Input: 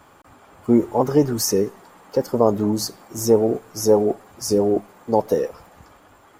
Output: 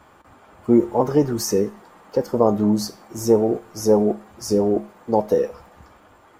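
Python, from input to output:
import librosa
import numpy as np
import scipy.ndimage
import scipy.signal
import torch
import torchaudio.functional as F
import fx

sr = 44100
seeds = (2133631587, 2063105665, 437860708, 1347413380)

y = fx.high_shelf(x, sr, hz=5300.0, db=-6.5)
y = fx.comb_fb(y, sr, f0_hz=70.0, decay_s=0.33, harmonics='odd', damping=0.0, mix_pct=60)
y = y * librosa.db_to_amplitude(6.0)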